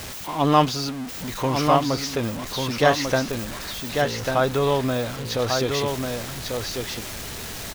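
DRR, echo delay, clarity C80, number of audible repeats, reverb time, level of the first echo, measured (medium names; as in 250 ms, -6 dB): no reverb, 1144 ms, no reverb, 1, no reverb, -4.5 dB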